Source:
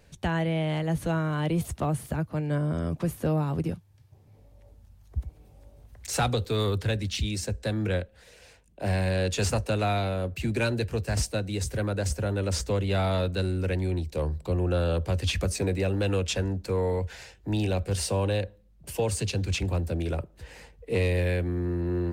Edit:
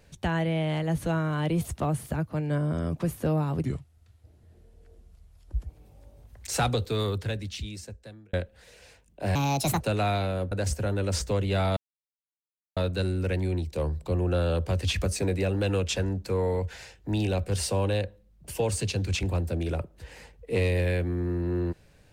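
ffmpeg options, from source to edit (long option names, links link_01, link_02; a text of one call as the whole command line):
ffmpeg -i in.wav -filter_complex "[0:a]asplit=8[link_01][link_02][link_03][link_04][link_05][link_06][link_07][link_08];[link_01]atrim=end=3.654[link_09];[link_02]atrim=start=3.65:end=5.26,asetpts=PTS-STARTPTS,asetrate=35280,aresample=44100,atrim=end_sample=88751,asetpts=PTS-STARTPTS[link_10];[link_03]atrim=start=5.256:end=7.93,asetpts=PTS-STARTPTS,afade=type=out:start_time=1.104:duration=1.57[link_11];[link_04]atrim=start=7.93:end=8.954,asetpts=PTS-STARTPTS,afade=type=in:duration=0.004:curve=hsin[link_12];[link_05]atrim=start=8.95:end=9.63,asetpts=PTS-STARTPTS,asetrate=66150,aresample=44100[link_13];[link_06]atrim=start=9.626:end=10.342[link_14];[link_07]atrim=start=11.908:end=13.16,asetpts=PTS-STARTPTS,afade=type=out:start_time=1.248:duration=0.004:curve=hsin,apad=pad_dur=1[link_15];[link_08]atrim=start=13.16,asetpts=PTS-STARTPTS,afade=type=in:duration=0.004:curve=hsin[link_16];[link_09][link_10]acrossfade=duration=0.004:curve1=hsin:curve2=hsin[link_17];[link_11][link_12]concat=n=2:v=0:a=1[link_18];[link_17][link_18]acrossfade=duration=0.004:curve1=hsin:curve2=hsin[link_19];[link_19][link_13]acrossfade=duration=0.004:curve1=hsin:curve2=hsin[link_20];[link_20][link_14]acrossfade=duration=0.004:curve1=hsin:curve2=hsin[link_21];[link_15][link_16]concat=n=2:v=0:a=1[link_22];[link_21][link_22]acrossfade=duration=0.004:curve1=hsin:curve2=hsin" out.wav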